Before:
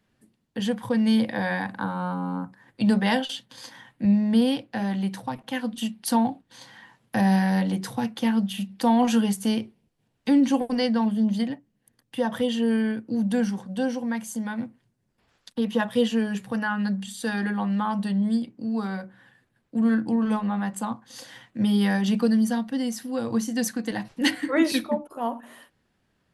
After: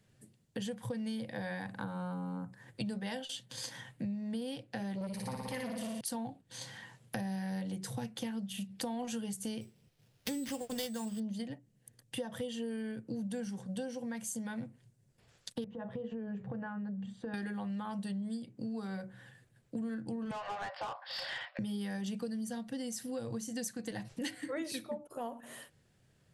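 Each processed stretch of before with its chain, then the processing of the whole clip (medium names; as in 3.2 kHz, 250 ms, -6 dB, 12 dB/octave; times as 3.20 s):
4.95–6.01 s: rippled EQ curve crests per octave 0.89, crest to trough 9 dB + flutter echo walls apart 10 m, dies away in 1.4 s + transformer saturation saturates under 720 Hz
9.61–11.20 s: treble shelf 2 kHz +8 dB + sample-rate reducer 8.1 kHz
15.64–17.34 s: low-pass 1.1 kHz + compression 4:1, threshold -32 dBFS + hum notches 60/120/180/240/300/360/420/480/540 Hz
20.31–21.59 s: brick-wall FIR band-pass 530–5500 Hz + overdrive pedal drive 22 dB, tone 1.6 kHz, clips at -20 dBFS
whole clip: graphic EQ 125/250/500/1000/8000 Hz +10/-5/+4/-5/+8 dB; compression 6:1, threshold -36 dBFS; trim -1 dB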